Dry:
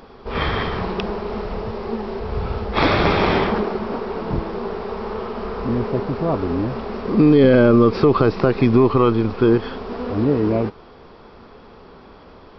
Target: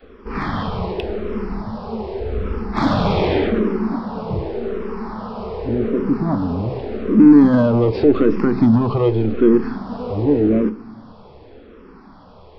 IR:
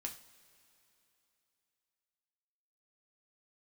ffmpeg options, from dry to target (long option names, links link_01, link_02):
-filter_complex "[0:a]adynamicequalizer=threshold=0.0398:dfrequency=240:dqfactor=1.1:tfrequency=240:tqfactor=1.1:attack=5:release=100:ratio=0.375:range=3:mode=boostabove:tftype=bell,acontrast=76,asplit=2[link_01][link_02];[link_02]tiltshelf=frequency=1100:gain=6[link_03];[1:a]atrim=start_sample=2205[link_04];[link_03][link_04]afir=irnorm=-1:irlink=0,volume=-0.5dB[link_05];[link_01][link_05]amix=inputs=2:normalize=0,asplit=2[link_06][link_07];[link_07]afreqshift=-0.86[link_08];[link_06][link_08]amix=inputs=2:normalize=1,volume=-10dB"